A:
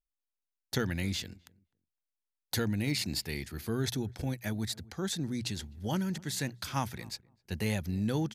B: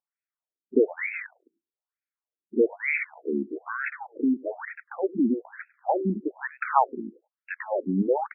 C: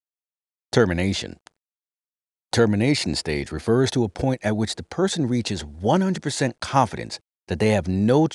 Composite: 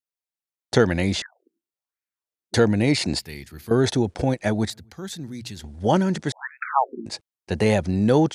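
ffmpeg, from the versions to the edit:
-filter_complex "[1:a]asplit=2[a][b];[0:a]asplit=2[c][d];[2:a]asplit=5[e][f][g][h][i];[e]atrim=end=1.222[j];[a]atrim=start=1.218:end=2.542[k];[f]atrim=start=2.538:end=3.192[l];[c]atrim=start=3.188:end=3.712[m];[g]atrim=start=3.708:end=4.702[n];[d]atrim=start=4.698:end=5.642[o];[h]atrim=start=5.638:end=6.322[p];[b]atrim=start=6.318:end=7.062[q];[i]atrim=start=7.058[r];[j][k]acrossfade=d=0.004:c1=hsin:c2=hsin[s];[s][l]acrossfade=d=0.004:c1=hsin:c2=hsin[t];[t][m]acrossfade=d=0.004:c1=hsin:c2=hsin[u];[u][n]acrossfade=d=0.004:c1=hsin:c2=hsin[v];[v][o]acrossfade=d=0.004:c1=hsin:c2=hsin[w];[w][p]acrossfade=d=0.004:c1=hsin:c2=hsin[x];[x][q]acrossfade=d=0.004:c1=hsin:c2=hsin[y];[y][r]acrossfade=d=0.004:c1=hsin:c2=hsin"

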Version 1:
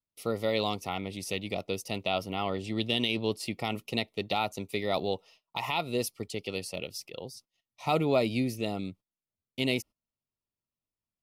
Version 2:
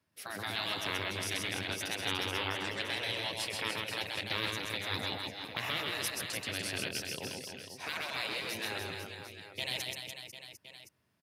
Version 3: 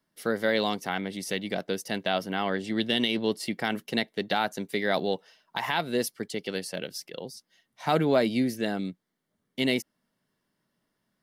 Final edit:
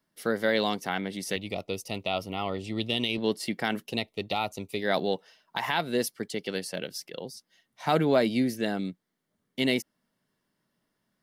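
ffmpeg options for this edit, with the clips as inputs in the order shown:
-filter_complex "[0:a]asplit=2[a][b];[2:a]asplit=3[c][d][e];[c]atrim=end=1.362[f];[a]atrim=start=1.358:end=3.182[g];[d]atrim=start=3.178:end=3.98[h];[b]atrim=start=3.82:end=4.9[i];[e]atrim=start=4.74[j];[f][g]acrossfade=d=0.004:c1=hsin:c2=hsin[k];[k][h]acrossfade=d=0.004:c1=hsin:c2=hsin[l];[l][i]acrossfade=d=0.16:c1=tri:c2=tri[m];[m][j]acrossfade=d=0.16:c1=tri:c2=tri"

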